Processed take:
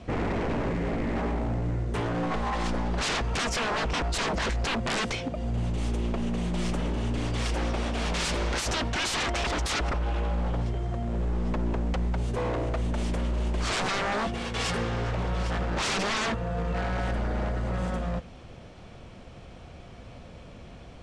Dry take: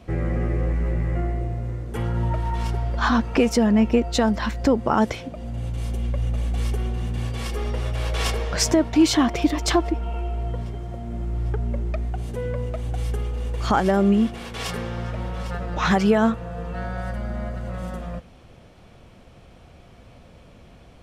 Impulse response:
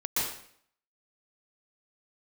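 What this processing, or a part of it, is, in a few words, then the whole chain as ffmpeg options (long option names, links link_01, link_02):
synthesiser wavefolder: -af "aeval=exprs='0.0531*(abs(mod(val(0)/0.0531+3,4)-2)-1)':channel_layout=same,lowpass=frequency=8600:width=0.5412,lowpass=frequency=8600:width=1.3066,volume=2.5dB"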